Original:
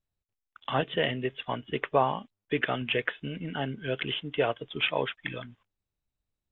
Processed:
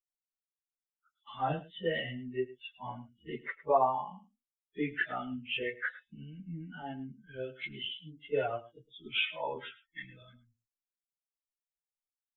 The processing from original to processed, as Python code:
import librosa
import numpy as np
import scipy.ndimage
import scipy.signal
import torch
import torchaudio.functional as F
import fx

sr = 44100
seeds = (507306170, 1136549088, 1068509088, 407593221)

p1 = fx.bin_expand(x, sr, power=2.0)
p2 = fx.dynamic_eq(p1, sr, hz=800.0, q=2.9, threshold_db=-48.0, ratio=4.0, max_db=5)
p3 = fx.stretch_vocoder_free(p2, sr, factor=1.9)
y = p3 + fx.echo_single(p3, sr, ms=106, db=-17.5, dry=0)